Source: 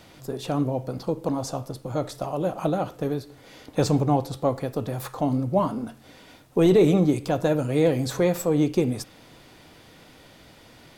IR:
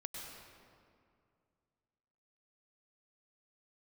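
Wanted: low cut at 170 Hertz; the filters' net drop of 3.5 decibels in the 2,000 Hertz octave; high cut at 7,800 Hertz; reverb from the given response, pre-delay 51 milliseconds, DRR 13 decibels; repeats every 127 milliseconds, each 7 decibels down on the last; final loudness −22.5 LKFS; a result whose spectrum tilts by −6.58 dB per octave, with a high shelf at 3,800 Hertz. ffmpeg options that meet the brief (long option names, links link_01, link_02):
-filter_complex "[0:a]highpass=170,lowpass=7800,equalizer=frequency=2000:width_type=o:gain=-3,highshelf=frequency=3800:gain=-5.5,aecho=1:1:127|254|381|508|635:0.447|0.201|0.0905|0.0407|0.0183,asplit=2[link_01][link_02];[1:a]atrim=start_sample=2205,adelay=51[link_03];[link_02][link_03]afir=irnorm=-1:irlink=0,volume=-11.5dB[link_04];[link_01][link_04]amix=inputs=2:normalize=0,volume=2.5dB"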